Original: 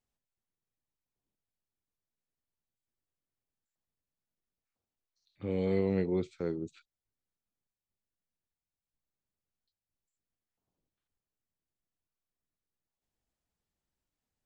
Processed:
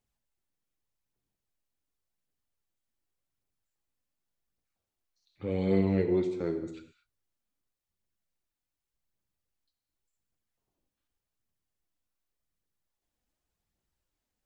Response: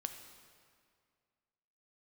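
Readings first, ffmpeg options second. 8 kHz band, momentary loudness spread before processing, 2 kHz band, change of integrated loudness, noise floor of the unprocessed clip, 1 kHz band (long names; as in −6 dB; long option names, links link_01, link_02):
can't be measured, 12 LU, +2.5 dB, +3.5 dB, below −85 dBFS, +3.5 dB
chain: -filter_complex "[0:a]aphaser=in_gain=1:out_gain=1:delay=4.2:decay=0.36:speed=0.87:type=triangular[link_01];[1:a]atrim=start_sample=2205,afade=type=out:start_time=0.3:duration=0.01,atrim=end_sample=13671[link_02];[link_01][link_02]afir=irnorm=-1:irlink=0,volume=4dB"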